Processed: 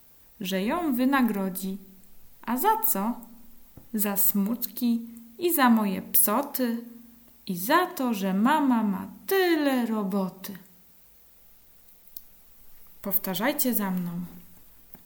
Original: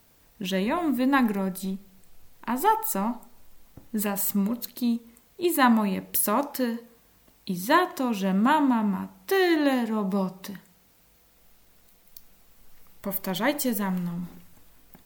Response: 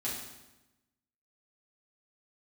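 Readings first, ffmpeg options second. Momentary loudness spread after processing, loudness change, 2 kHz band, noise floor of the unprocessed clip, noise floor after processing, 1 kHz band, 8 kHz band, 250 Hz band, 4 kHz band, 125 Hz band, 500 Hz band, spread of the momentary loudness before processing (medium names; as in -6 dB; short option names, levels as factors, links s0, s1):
18 LU, +0.5 dB, -1.0 dB, -60 dBFS, -55 dBFS, -1.0 dB, +2.5 dB, -0.5 dB, -0.5 dB, -1.0 dB, -1.0 dB, 14 LU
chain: -filter_complex "[0:a]highshelf=f=12000:g=11,asplit=2[s0][s1];[1:a]atrim=start_sample=2205,lowshelf=f=390:g=10[s2];[s1][s2]afir=irnorm=-1:irlink=0,volume=0.0531[s3];[s0][s3]amix=inputs=2:normalize=0,volume=0.841"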